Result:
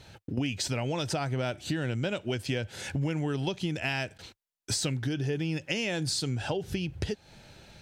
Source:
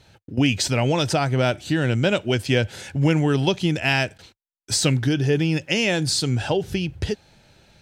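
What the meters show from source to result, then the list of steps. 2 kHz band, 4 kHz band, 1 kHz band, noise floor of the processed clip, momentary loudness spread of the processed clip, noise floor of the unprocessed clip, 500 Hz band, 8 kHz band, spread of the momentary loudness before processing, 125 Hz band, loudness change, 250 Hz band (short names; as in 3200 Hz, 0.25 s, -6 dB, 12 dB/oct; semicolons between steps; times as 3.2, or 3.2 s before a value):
-10.0 dB, -9.5 dB, -10.5 dB, -83 dBFS, 6 LU, -85 dBFS, -10.5 dB, -8.0 dB, 8 LU, -9.5 dB, -10.0 dB, -10.0 dB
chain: compressor 4:1, threshold -32 dBFS, peak gain reduction 15 dB; gain +2 dB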